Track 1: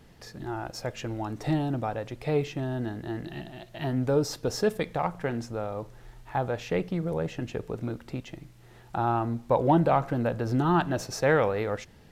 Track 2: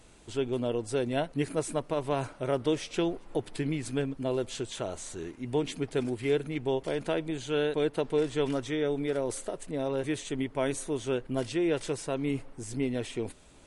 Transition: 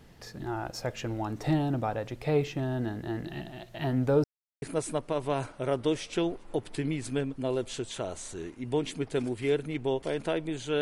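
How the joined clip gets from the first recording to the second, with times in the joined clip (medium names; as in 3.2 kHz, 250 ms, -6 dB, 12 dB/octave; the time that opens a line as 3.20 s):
track 1
4.24–4.62 s: mute
4.62 s: go over to track 2 from 1.43 s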